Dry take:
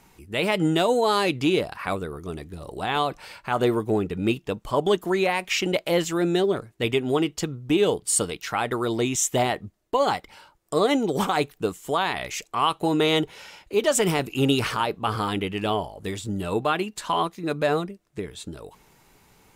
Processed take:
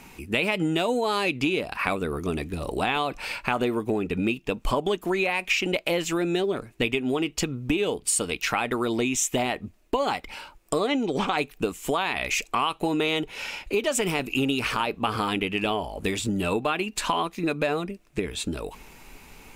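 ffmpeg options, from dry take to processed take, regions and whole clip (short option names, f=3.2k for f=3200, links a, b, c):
-filter_complex "[0:a]asettb=1/sr,asplit=3[a][b][c];[a]atrim=end=10.874[d];[b]atrim=start=10.87:end=11.38,asetpts=PTS-STARTPTS,afade=t=in:d=0.004:c=qsin,afade=t=out:st=0.506:d=0.004:c=qsin,lowpass=8k,acrossover=split=4700[e][f];[f]acompressor=threshold=-57dB:ratio=4:attack=1:release=60[g];[e][g]amix=inputs=2:normalize=0,highshelf=f=4k:g=7.5[h];[c]atrim=start=11.376[i];[d][h]acrossfade=d=0.004:c1=hsin:c2=qsin[j];[j][i]acrossfade=d=0.004:c1=qsin:c2=hsin,equalizer=f=100:t=o:w=0.33:g=-6,equalizer=f=250:t=o:w=0.33:g=6,equalizer=f=2.5k:t=o:w=0.33:g=9,acompressor=threshold=-29dB:ratio=6,asubboost=boost=3:cutoff=61,volume=7dB"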